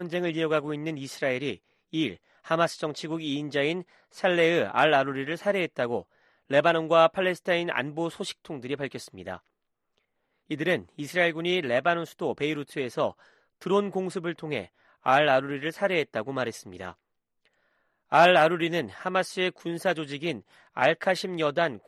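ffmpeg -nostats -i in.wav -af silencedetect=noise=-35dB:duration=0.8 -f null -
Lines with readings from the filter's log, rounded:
silence_start: 9.37
silence_end: 10.51 | silence_duration: 1.14
silence_start: 16.91
silence_end: 18.12 | silence_duration: 1.21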